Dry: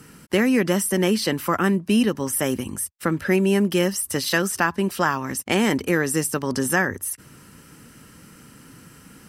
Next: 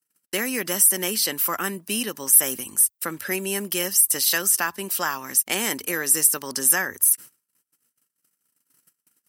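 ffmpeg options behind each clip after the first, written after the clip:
-af "agate=range=0.00631:threshold=0.00794:ratio=16:detection=peak,aemphasis=mode=production:type=riaa,volume=0.562"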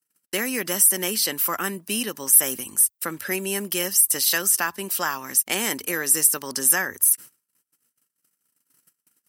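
-af anull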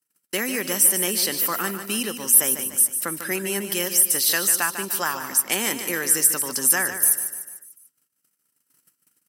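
-af "aecho=1:1:148|296|444|592|740:0.335|0.164|0.0804|0.0394|0.0193"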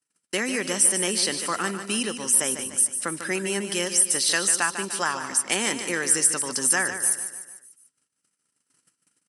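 -af "aresample=22050,aresample=44100"

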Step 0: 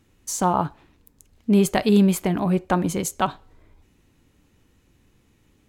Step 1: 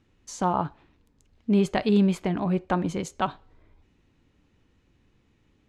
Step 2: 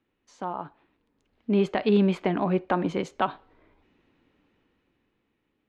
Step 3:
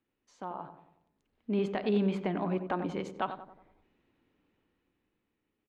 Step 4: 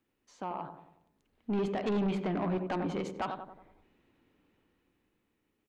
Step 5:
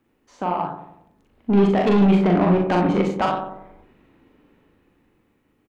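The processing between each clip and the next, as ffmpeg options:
-af "lowpass=4800,volume=0.631"
-filter_complex "[0:a]acrossover=split=210 4000:gain=0.224 1 0.126[s0][s1][s2];[s0][s1][s2]amix=inputs=3:normalize=0,alimiter=limit=0.188:level=0:latency=1:release=103,dynaudnorm=f=300:g=9:m=3.76,volume=0.473"
-filter_complex "[0:a]asplit=2[s0][s1];[s1]adelay=92,lowpass=f=1300:p=1,volume=0.376,asplit=2[s2][s3];[s3]adelay=92,lowpass=f=1300:p=1,volume=0.52,asplit=2[s4][s5];[s5]adelay=92,lowpass=f=1300:p=1,volume=0.52,asplit=2[s6][s7];[s7]adelay=92,lowpass=f=1300:p=1,volume=0.52,asplit=2[s8][s9];[s9]adelay=92,lowpass=f=1300:p=1,volume=0.52,asplit=2[s10][s11];[s11]adelay=92,lowpass=f=1300:p=1,volume=0.52[s12];[s0][s2][s4][s6][s8][s10][s12]amix=inputs=7:normalize=0,volume=0.422"
-af "asoftclip=type=tanh:threshold=0.0316,volume=1.5"
-filter_complex "[0:a]asplit=2[s0][s1];[s1]adynamicsmooth=sensitivity=7.5:basefreq=3000,volume=1.33[s2];[s0][s2]amix=inputs=2:normalize=0,aecho=1:1:40|61:0.668|0.376,volume=1.78"

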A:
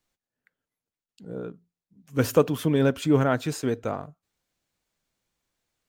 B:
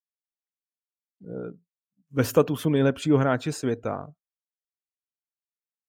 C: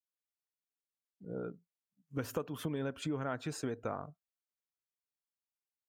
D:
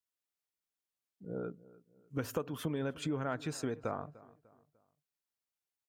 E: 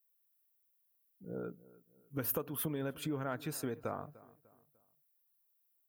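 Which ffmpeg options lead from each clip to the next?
-af "afftdn=nr=14:nf=-49,agate=range=0.0224:threshold=0.00501:ratio=3:detection=peak"
-af "acompressor=threshold=0.0398:ratio=12,adynamicequalizer=threshold=0.00447:dfrequency=1200:dqfactor=1:tfrequency=1200:tqfactor=1:attack=5:release=100:ratio=0.375:range=2:mode=boostabove:tftype=bell,volume=0.531"
-filter_complex "[0:a]asplit=2[s0][s1];[s1]adelay=298,lowpass=f=2300:p=1,volume=0.1,asplit=2[s2][s3];[s3]adelay=298,lowpass=f=2300:p=1,volume=0.41,asplit=2[s4][s5];[s5]adelay=298,lowpass=f=2300:p=1,volume=0.41[s6];[s0][s2][s4][s6]amix=inputs=4:normalize=0,volume=1.12"
-af "aexciter=amount=6.5:drive=7.3:freq=10000,volume=0.794"

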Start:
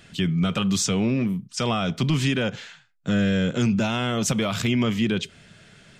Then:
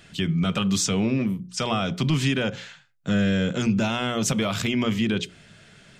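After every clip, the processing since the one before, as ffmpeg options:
-af "bandreject=f=60:t=h:w=6,bandreject=f=120:t=h:w=6,bandreject=f=180:t=h:w=6,bandreject=f=240:t=h:w=6,bandreject=f=300:t=h:w=6,bandreject=f=360:t=h:w=6,bandreject=f=420:t=h:w=6,bandreject=f=480:t=h:w=6,bandreject=f=540:t=h:w=6"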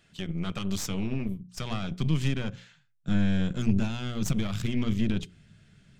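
-af "aeval=exprs='0.282*(cos(1*acos(clip(val(0)/0.282,-1,1)))-cos(1*PI/2))+0.02*(cos(3*acos(clip(val(0)/0.282,-1,1)))-cos(3*PI/2))+0.0447*(cos(4*acos(clip(val(0)/0.282,-1,1)))-cos(4*PI/2))+0.00631*(cos(7*acos(clip(val(0)/0.282,-1,1)))-cos(7*PI/2))':c=same,asubboost=boost=4.5:cutoff=250,volume=0.355"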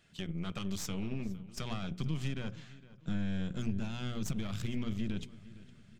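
-filter_complex "[0:a]acompressor=threshold=0.0282:ratio=2,asplit=2[s0][s1];[s1]adelay=460,lowpass=f=4700:p=1,volume=0.126,asplit=2[s2][s3];[s3]adelay=460,lowpass=f=4700:p=1,volume=0.41,asplit=2[s4][s5];[s5]adelay=460,lowpass=f=4700:p=1,volume=0.41[s6];[s0][s2][s4][s6]amix=inputs=4:normalize=0,volume=0.668"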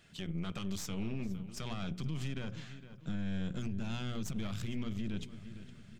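-af "alimiter=level_in=2.51:limit=0.0631:level=0:latency=1:release=107,volume=0.398,volume=1.58"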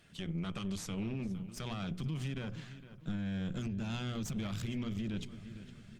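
-af "volume=1.12" -ar 48000 -c:a libopus -b:a 32k

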